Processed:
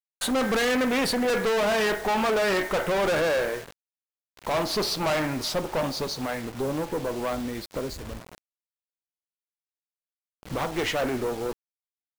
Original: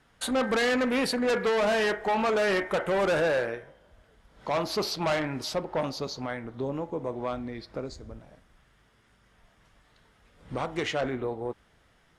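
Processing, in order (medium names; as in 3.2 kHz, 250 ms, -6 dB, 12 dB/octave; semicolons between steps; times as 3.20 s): valve stage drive 29 dB, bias 0.45; word length cut 8-bit, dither none; trim +7.5 dB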